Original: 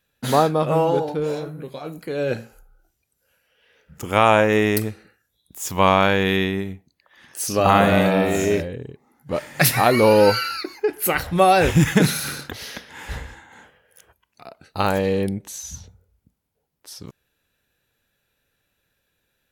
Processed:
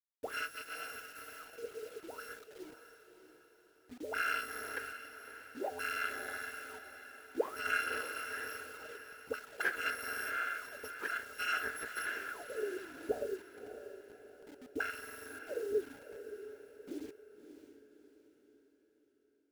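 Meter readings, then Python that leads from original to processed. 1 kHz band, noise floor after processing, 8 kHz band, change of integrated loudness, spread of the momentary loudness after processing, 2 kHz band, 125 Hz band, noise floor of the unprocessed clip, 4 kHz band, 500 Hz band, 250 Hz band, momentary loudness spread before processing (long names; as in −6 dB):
−21.0 dB, −70 dBFS, −20.0 dB, −20.5 dB, 17 LU, −11.0 dB, below −40 dB, −74 dBFS, −18.5 dB, −21.5 dB, −26.5 dB, 19 LU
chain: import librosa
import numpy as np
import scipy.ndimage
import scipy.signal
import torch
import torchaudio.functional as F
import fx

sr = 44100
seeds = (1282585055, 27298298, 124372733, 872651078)

y = fx.bit_reversed(x, sr, seeds[0], block=256)
y = fx.auto_wah(y, sr, base_hz=200.0, top_hz=1600.0, q=17.0, full_db=-21.5, direction='up')
y = fx.curve_eq(y, sr, hz=(180.0, 450.0, 700.0, 7700.0, 11000.0), db=(0, 14, -4, -17, -5))
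y = fx.quant_dither(y, sr, seeds[1], bits=12, dither='none')
y = fx.peak_eq(y, sr, hz=1100.0, db=-8.0, octaves=0.2)
y = fx.echo_diffused(y, sr, ms=597, feedback_pct=45, wet_db=-10.5)
y = y * librosa.db_to_amplitude(16.5)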